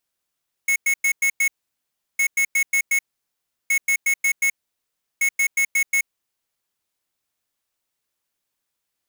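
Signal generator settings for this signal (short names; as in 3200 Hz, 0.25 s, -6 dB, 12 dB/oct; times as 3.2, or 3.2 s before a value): beep pattern square 2190 Hz, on 0.08 s, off 0.10 s, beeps 5, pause 0.71 s, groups 4, -18.5 dBFS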